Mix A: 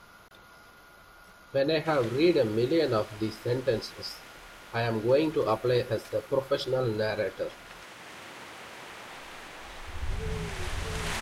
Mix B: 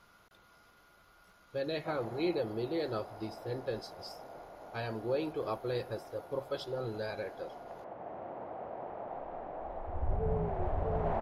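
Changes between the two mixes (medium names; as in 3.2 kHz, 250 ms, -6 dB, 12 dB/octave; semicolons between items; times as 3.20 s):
speech -9.5 dB; background: add resonant low-pass 690 Hz, resonance Q 3.6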